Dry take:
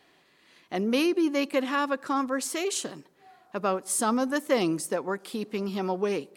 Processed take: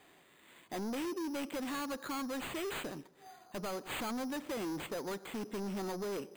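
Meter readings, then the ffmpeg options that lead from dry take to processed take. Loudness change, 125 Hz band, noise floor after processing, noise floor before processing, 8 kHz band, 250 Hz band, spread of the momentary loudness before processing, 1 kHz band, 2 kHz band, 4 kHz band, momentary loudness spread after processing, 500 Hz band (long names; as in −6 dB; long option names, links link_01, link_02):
−11.5 dB, −8.5 dB, −63 dBFS, −63 dBFS, −14.5 dB, −10.5 dB, 8 LU, −11.5 dB, −10.0 dB, −9.0 dB, 6 LU, −12.0 dB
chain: -af "highshelf=frequency=6500:gain=-10.5,acompressor=threshold=-27dB:ratio=4,acrusher=samples=8:mix=1:aa=0.000001,asoftclip=type=tanh:threshold=-35.5dB"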